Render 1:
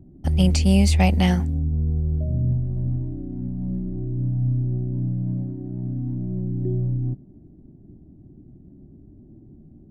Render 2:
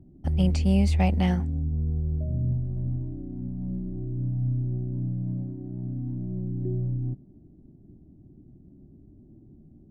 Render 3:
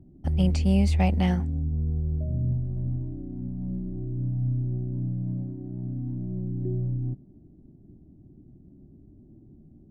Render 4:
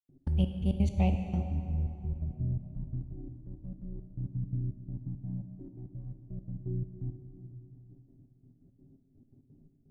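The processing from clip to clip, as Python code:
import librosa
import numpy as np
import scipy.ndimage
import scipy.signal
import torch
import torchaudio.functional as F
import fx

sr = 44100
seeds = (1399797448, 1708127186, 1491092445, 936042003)

y1 = fx.high_shelf(x, sr, hz=3400.0, db=-11.0)
y1 = F.gain(torch.from_numpy(y1), -4.5).numpy()
y2 = y1
y3 = fx.env_flanger(y2, sr, rest_ms=8.9, full_db=-21.5)
y3 = fx.step_gate(y3, sr, bpm=169, pattern='.x.xx..x', floor_db=-60.0, edge_ms=4.5)
y3 = fx.rev_plate(y3, sr, seeds[0], rt60_s=3.1, hf_ratio=0.65, predelay_ms=0, drr_db=5.5)
y3 = F.gain(torch.from_numpy(y3), -5.0).numpy()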